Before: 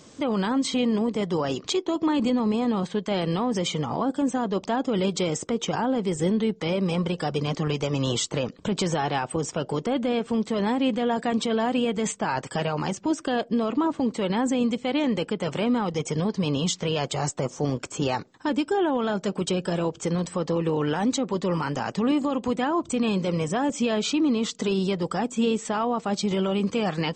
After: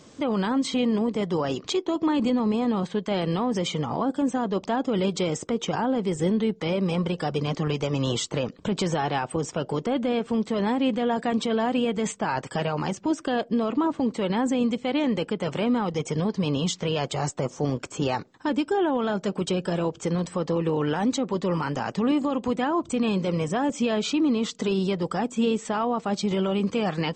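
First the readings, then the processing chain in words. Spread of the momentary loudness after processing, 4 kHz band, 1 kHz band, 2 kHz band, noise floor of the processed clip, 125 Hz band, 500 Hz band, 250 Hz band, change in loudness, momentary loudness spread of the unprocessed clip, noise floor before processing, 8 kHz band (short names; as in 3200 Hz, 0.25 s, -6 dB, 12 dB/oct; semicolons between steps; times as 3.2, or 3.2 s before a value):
4 LU, -1.5 dB, 0.0 dB, -0.5 dB, -49 dBFS, 0.0 dB, 0.0 dB, 0.0 dB, 0.0 dB, 4 LU, -49 dBFS, -3.0 dB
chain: high shelf 5400 Hz -5 dB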